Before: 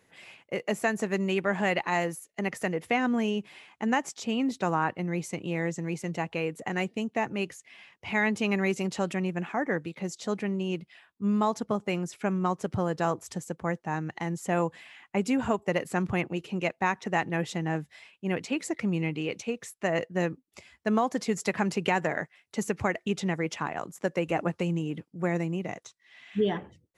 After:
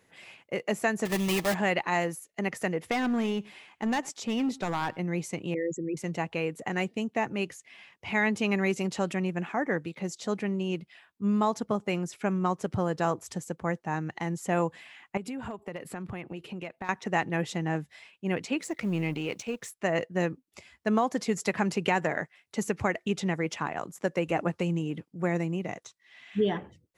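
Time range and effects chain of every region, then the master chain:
1.05–1.55 s: block-companded coder 3-bit + Butterworth band-stop 1.5 kHz, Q 5.9 + comb 6.3 ms, depth 33%
2.91–4.99 s: overload inside the chain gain 24 dB + delay 102 ms -24 dB
5.54–5.97 s: resonances exaggerated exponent 3 + Butterworth band-stop 750 Hz, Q 1.7
15.17–16.89 s: peaking EQ 6.3 kHz -8 dB 0.58 oct + hard clipper -14 dBFS + compression 5:1, threshold -34 dBFS
18.62–19.72 s: companding laws mixed up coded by A + transient shaper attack -2 dB, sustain +6 dB
whole clip: none

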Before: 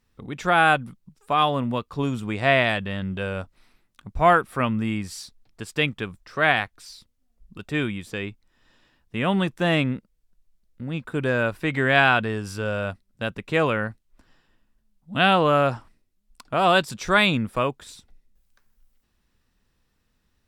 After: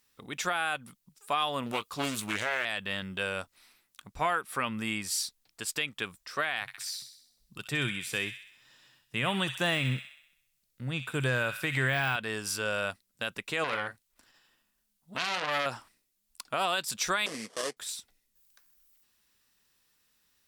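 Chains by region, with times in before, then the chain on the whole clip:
1.66–2.65 s: treble shelf 4.6 kHz +7.5 dB + doubling 19 ms -13 dB + loudspeaker Doppler distortion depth 0.45 ms
4.08–4.77 s: treble shelf 9.5 kHz -4.5 dB + band-stop 650 Hz, Q 15
6.61–12.16 s: de-esser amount 65% + peaking EQ 130 Hz +15 dB 0.37 oct + feedback echo behind a high-pass 64 ms, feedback 55%, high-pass 1.9 kHz, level -8 dB
13.64–15.66 s: doubling 39 ms -9 dB + transformer saturation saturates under 2.8 kHz
17.26–17.77 s: sample-rate reducer 2.3 kHz, jitter 20% + cabinet simulation 250–8600 Hz, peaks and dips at 470 Hz +6 dB, 900 Hz -9 dB, 1.4 kHz -8 dB, 2.6 kHz -6 dB, 3.8 kHz -8 dB, 6.9 kHz -7 dB
whole clip: tilt EQ +3.5 dB/octave; compression, threshold -21 dBFS; peak limiter -15.5 dBFS; trim -2.5 dB

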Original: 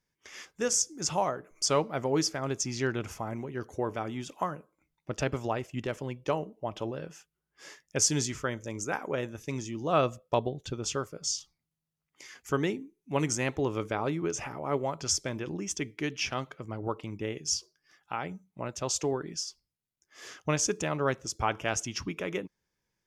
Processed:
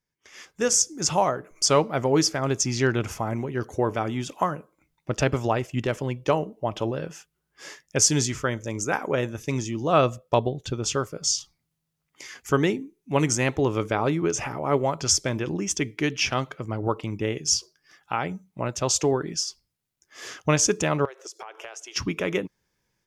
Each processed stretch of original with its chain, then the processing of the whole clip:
21.05–21.96 s: elliptic high-pass 380 Hz, stop band 50 dB + compression 20:1, threshold -42 dBFS
whole clip: peaking EQ 120 Hz +2.5 dB 0.3 oct; level rider gain up to 11 dB; trim -3.5 dB

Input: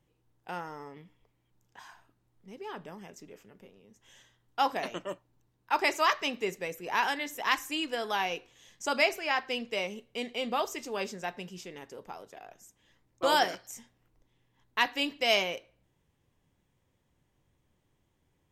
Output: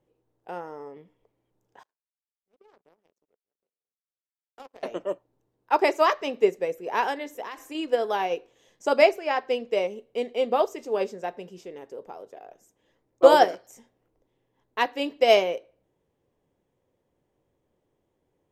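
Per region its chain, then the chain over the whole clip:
1.83–4.83 s: hum notches 50/100/150/200 Hz + compression 3:1, threshold -38 dBFS + power-law waveshaper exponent 3
7.32–7.75 s: de-hum 82.28 Hz, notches 8 + compression 4:1, threshold -32 dBFS
whole clip: peaking EQ 480 Hz +15 dB 1.9 oct; upward expansion 1.5:1, over -27 dBFS; trim +1.5 dB

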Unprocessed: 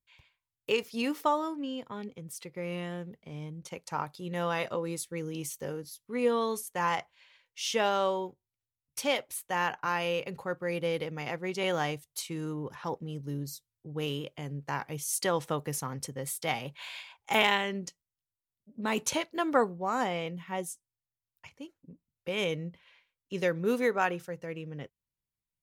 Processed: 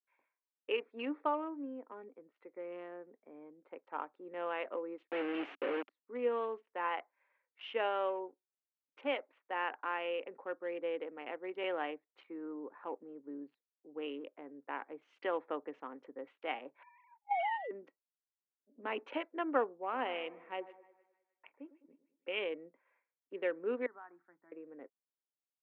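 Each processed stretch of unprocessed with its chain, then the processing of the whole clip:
5.07–5.90 s: high-pass 45 Hz + companded quantiser 2-bit
16.83–17.71 s: formants replaced by sine waves + low-pass 1.6 kHz
19.83–22.39 s: peaking EQ 2.8 kHz +9 dB 0.51 oct + two-band feedback delay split 1.6 kHz, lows 103 ms, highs 154 ms, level -14.5 dB
23.86–24.52 s: static phaser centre 1.2 kHz, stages 4 + compression 4:1, threshold -43 dBFS + three bands expanded up and down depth 100%
whole clip: local Wiener filter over 15 samples; Chebyshev band-pass 270–2900 Hz, order 4; trim -5.5 dB

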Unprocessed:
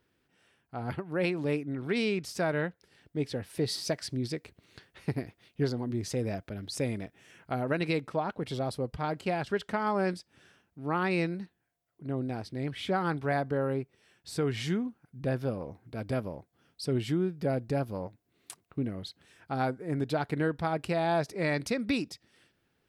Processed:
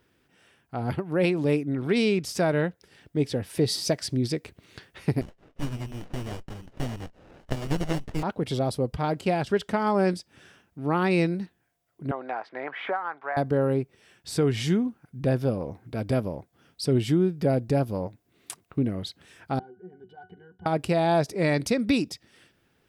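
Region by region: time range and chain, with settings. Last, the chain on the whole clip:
5.21–8.23 s: tilt EQ +2.5 dB/octave + frequency inversion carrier 3.1 kHz + sliding maximum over 33 samples
12.11–13.37 s: Butterworth band-pass 1.2 kHz, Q 1.1 + three bands compressed up and down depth 100%
19.59–20.66 s: bass shelf 130 Hz -8.5 dB + compression 2:1, threshold -40 dBFS + pitch-class resonator F#, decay 0.17 s
whole clip: band-stop 4.2 kHz, Q 23; dynamic bell 1.6 kHz, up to -5 dB, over -46 dBFS, Q 0.78; trim +7 dB

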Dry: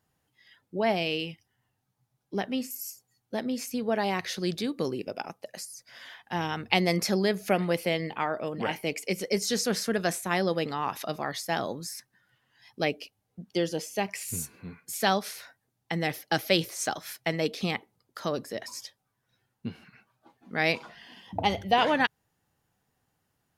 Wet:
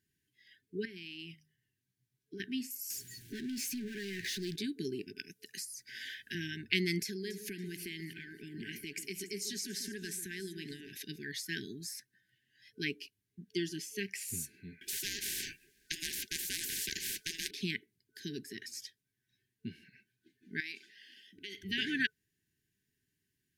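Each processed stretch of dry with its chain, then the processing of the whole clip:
0.85–2.40 s: compression 8:1, threshold -34 dBFS + de-hum 51.52 Hz, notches 5
2.90–4.56 s: power-law waveshaper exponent 0.5 + compression 3:1, threshold -33 dBFS
5.18–6.35 s: treble shelf 4.5 kHz +5 dB + three bands compressed up and down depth 70%
7.00–10.92 s: treble shelf 5.3 kHz +4.5 dB + compression 4:1, threshold -31 dBFS + echo whose repeats swap between lows and highs 141 ms, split 1.2 kHz, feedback 53%, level -9 dB
14.81–17.51 s: treble shelf 7.9 kHz -7.5 dB + ring modulator 820 Hz + spectrum-flattening compressor 10:1
20.60–21.63 s: high-pass 450 Hz + peaking EQ 960 Hz -4 dB 2.5 oct + compression 10:1, threshold -31 dBFS
whole clip: FFT band-reject 440–1500 Hz; de-esser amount 45%; bass shelf 210 Hz -4.5 dB; trim -4.5 dB

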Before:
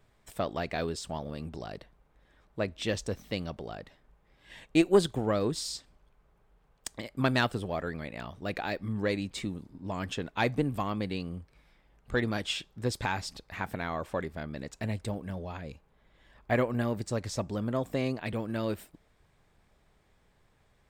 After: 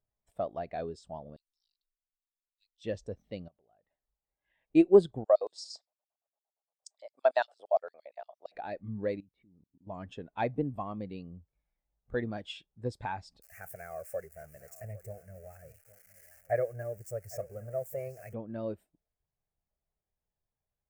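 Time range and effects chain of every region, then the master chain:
1.36–2.84 s: block-companded coder 7-bit + inverse Chebyshev band-stop 100–760 Hz, stop band 80 dB
3.48–4.70 s: compression 5:1, threshold -49 dBFS + low-pass 3 kHz + bass shelf 420 Hz -5.5 dB
5.24–8.55 s: low-pass 10 kHz + LFO high-pass square 8.7 Hz 640–5300 Hz
9.20–9.87 s: level held to a coarse grid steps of 24 dB + distance through air 320 m
13.42–18.34 s: zero-crossing glitches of -25 dBFS + static phaser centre 980 Hz, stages 6 + delay 811 ms -13.5 dB
whole clip: peaking EQ 690 Hz +4.5 dB 0.94 oct; spectral contrast expander 1.5:1

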